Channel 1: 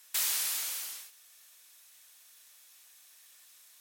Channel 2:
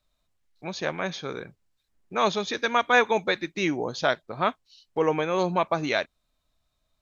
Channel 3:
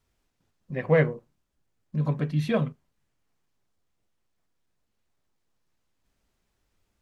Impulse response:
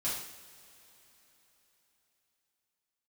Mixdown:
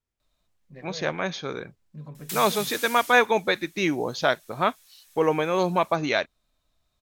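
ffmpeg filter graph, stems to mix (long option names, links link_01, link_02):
-filter_complex "[0:a]acrossover=split=390[link_01][link_02];[link_02]acompressor=threshold=-35dB:ratio=2[link_03];[link_01][link_03]amix=inputs=2:normalize=0,adelay=2150,volume=0.5dB[link_04];[1:a]adelay=200,volume=1.5dB[link_05];[2:a]alimiter=limit=-20dB:level=0:latency=1,volume=-13dB[link_06];[link_04][link_05][link_06]amix=inputs=3:normalize=0"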